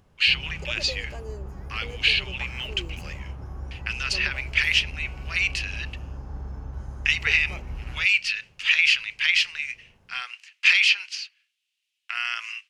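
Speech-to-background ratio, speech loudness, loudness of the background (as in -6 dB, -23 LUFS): 15.0 dB, -23.0 LUFS, -38.0 LUFS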